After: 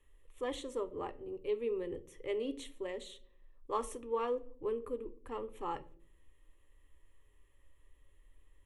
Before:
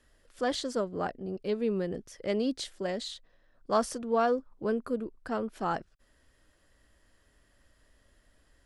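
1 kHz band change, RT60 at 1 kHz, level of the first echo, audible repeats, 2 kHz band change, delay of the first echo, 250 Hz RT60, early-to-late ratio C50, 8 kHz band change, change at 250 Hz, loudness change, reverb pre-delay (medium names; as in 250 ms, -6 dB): -8.0 dB, 0.40 s, no echo, no echo, -10.5 dB, no echo, 0.95 s, 18.5 dB, -9.5 dB, -11.5 dB, -7.5 dB, 5 ms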